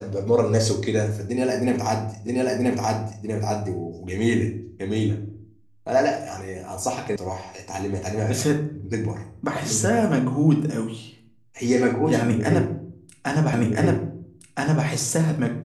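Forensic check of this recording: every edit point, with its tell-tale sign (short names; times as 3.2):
2.27 repeat of the last 0.98 s
7.16 sound cut off
13.53 repeat of the last 1.32 s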